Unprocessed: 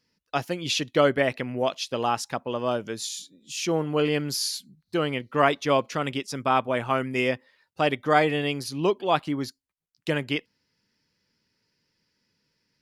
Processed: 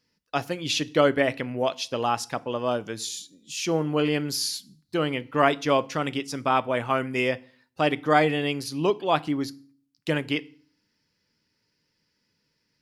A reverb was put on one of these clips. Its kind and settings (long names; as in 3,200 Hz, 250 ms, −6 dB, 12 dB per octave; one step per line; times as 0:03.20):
feedback delay network reverb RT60 0.46 s, low-frequency decay 1.4×, high-frequency decay 0.95×, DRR 16 dB